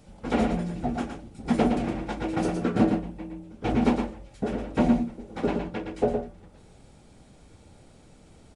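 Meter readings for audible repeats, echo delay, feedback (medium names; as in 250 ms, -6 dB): 1, 115 ms, no regular repeats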